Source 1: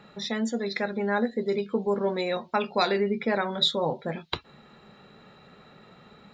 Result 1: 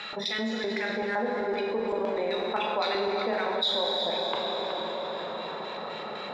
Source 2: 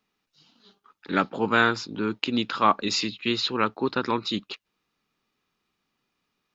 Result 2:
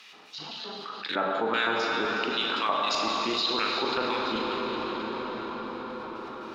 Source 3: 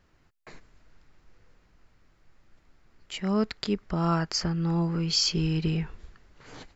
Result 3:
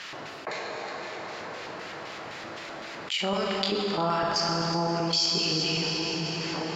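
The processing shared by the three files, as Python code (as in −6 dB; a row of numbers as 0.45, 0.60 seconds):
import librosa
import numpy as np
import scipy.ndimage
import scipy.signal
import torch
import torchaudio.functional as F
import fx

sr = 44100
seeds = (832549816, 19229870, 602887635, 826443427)

p1 = scipy.signal.sosfilt(scipy.signal.butter(4, 100.0, 'highpass', fs=sr, output='sos'), x)
p2 = np.sign(p1) * np.maximum(np.abs(p1) - 10.0 ** (-36.5 / 20.0), 0.0)
p3 = p1 + F.gain(torch.from_numpy(p2), -6.0).numpy()
p4 = fx.filter_lfo_bandpass(p3, sr, shape='square', hz=3.9, low_hz=720.0, high_hz=3300.0, q=1.1)
p5 = fx.doubler(p4, sr, ms=40.0, db=-10.5)
p6 = p5 + 10.0 ** (-14.0 / 20.0) * np.pad(p5, (int(370 * sr / 1000.0), 0))[:len(p5)]
p7 = fx.rev_plate(p6, sr, seeds[0], rt60_s=3.9, hf_ratio=0.7, predelay_ms=0, drr_db=1.0)
p8 = fx.env_flatten(p7, sr, amount_pct=70)
y = p8 * 10.0 ** (-30 / 20.0) / np.sqrt(np.mean(np.square(p8)))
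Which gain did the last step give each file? −8.5, −8.5, −2.5 decibels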